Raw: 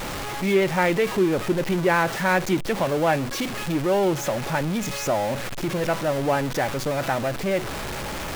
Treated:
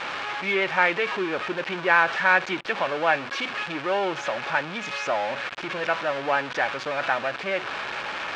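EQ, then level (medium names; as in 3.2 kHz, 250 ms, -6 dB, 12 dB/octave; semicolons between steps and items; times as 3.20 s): band-pass filter 2 kHz, Q 0.97; distance through air 110 m; band-stop 2 kHz, Q 12; +7.0 dB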